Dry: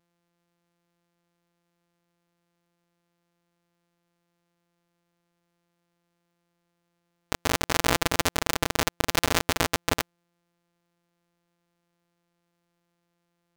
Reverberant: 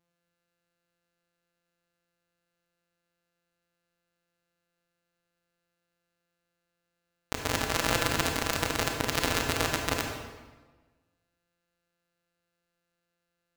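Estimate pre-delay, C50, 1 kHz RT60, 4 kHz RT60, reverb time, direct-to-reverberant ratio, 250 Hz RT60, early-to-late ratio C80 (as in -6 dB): 26 ms, 3.5 dB, 1.2 s, 1.0 s, 1.3 s, 2.5 dB, 1.5 s, 5.5 dB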